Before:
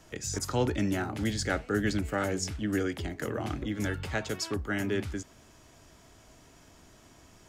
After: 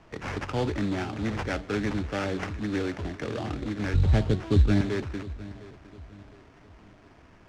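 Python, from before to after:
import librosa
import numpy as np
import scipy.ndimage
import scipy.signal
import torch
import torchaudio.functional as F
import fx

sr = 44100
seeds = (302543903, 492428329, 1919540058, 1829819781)

y = fx.rattle_buzz(x, sr, strikes_db=-32.0, level_db=-37.0)
y = 10.0 ** (-20.5 / 20.0) * np.tanh(y / 10.0 ** (-20.5 / 20.0))
y = fx.tilt_eq(y, sr, slope=-4.5, at=(3.94, 4.81))
y = fx.echo_feedback(y, sr, ms=708, feedback_pct=38, wet_db=-18.0)
y = fx.sample_hold(y, sr, seeds[0], rate_hz=3900.0, jitter_pct=20)
y = fx.air_absorb(y, sr, metres=110.0)
y = F.gain(torch.from_numpy(y), 2.0).numpy()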